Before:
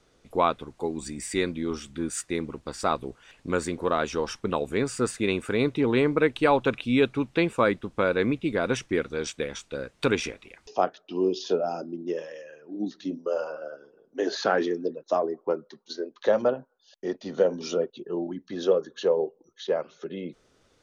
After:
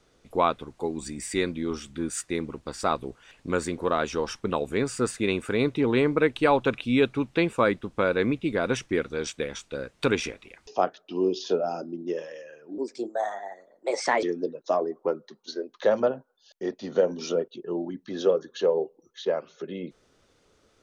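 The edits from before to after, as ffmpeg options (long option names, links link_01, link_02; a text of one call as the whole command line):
ffmpeg -i in.wav -filter_complex "[0:a]asplit=3[link_01][link_02][link_03];[link_01]atrim=end=12.784[link_04];[link_02]atrim=start=12.78:end=14.65,asetpts=PTS-STARTPTS,asetrate=56889,aresample=44100[link_05];[link_03]atrim=start=14.646[link_06];[link_04][link_05]acrossfade=duration=0.004:curve1=hsin:curve2=hsin[link_07];[link_07][link_06]acrossfade=duration=0.004:curve1=hsin:curve2=hsin" out.wav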